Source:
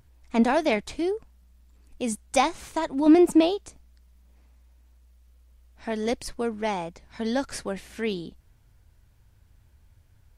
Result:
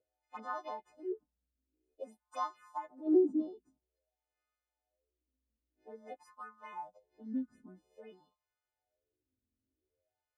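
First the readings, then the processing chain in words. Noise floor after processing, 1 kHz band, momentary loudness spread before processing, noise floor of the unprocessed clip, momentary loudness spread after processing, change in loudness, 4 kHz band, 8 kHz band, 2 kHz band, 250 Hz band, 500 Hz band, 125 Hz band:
under -85 dBFS, -13.0 dB, 15 LU, -59 dBFS, 24 LU, -11.5 dB, under -25 dB, under -25 dB, -20.5 dB, -13.5 dB, -12.0 dB, under -20 dB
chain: partials quantised in pitch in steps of 3 st; touch-sensitive phaser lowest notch 170 Hz, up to 2.4 kHz, full sweep at -17 dBFS; wah-wah 0.5 Hz 230–1200 Hz, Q 9.2

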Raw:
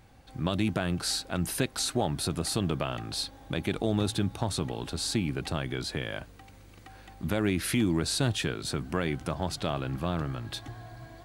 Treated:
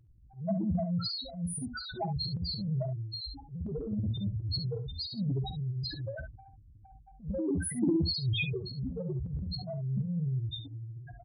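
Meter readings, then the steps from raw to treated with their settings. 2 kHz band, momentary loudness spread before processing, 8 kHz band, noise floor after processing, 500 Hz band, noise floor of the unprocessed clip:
-8.0 dB, 11 LU, -10.5 dB, -56 dBFS, -6.0 dB, -52 dBFS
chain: loudest bins only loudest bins 1; transient shaper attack -12 dB, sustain +11 dB; early reflections 15 ms -14.5 dB, 52 ms -13.5 dB, 69 ms -11 dB; trim +5.5 dB

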